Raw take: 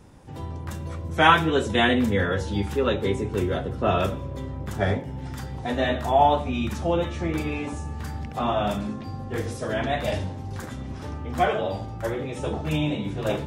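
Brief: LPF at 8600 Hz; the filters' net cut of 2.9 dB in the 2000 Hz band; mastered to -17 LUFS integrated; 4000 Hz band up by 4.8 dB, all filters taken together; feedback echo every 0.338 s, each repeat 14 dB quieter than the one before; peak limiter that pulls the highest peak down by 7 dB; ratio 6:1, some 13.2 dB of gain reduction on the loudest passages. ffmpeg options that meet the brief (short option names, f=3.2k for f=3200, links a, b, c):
-af "lowpass=8.6k,equalizer=f=2k:t=o:g=-6,equalizer=f=4k:t=o:g=8.5,acompressor=threshold=-27dB:ratio=6,alimiter=limit=-22dB:level=0:latency=1,aecho=1:1:338|676:0.2|0.0399,volume=15.5dB"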